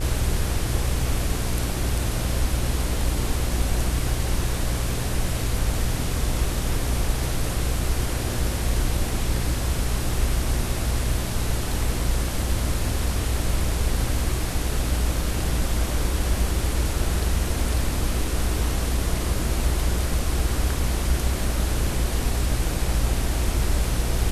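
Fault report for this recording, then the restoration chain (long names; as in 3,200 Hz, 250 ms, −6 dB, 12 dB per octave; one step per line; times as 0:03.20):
mains buzz 60 Hz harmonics 27 −27 dBFS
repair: hum removal 60 Hz, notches 27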